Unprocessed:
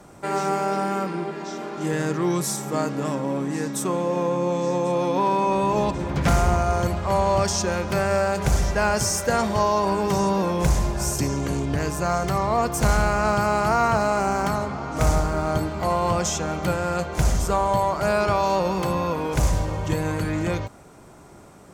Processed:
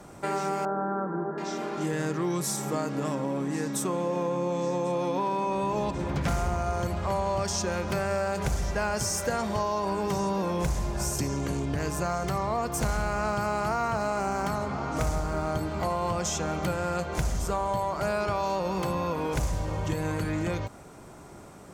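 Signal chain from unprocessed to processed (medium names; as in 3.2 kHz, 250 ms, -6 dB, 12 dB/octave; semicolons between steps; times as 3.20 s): 0.65–1.38 s: elliptic low-pass 1.6 kHz, stop band 40 dB; compression 3:1, threshold -27 dBFS, peak gain reduction 9.5 dB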